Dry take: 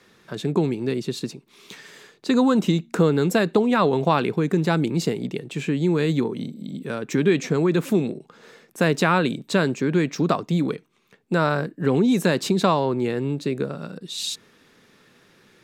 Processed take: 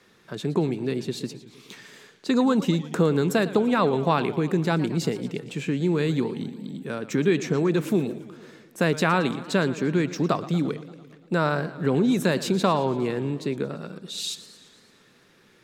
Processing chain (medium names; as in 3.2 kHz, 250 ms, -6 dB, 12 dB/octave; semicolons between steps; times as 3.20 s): modulated delay 114 ms, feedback 65%, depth 191 cents, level -16 dB; trim -2.5 dB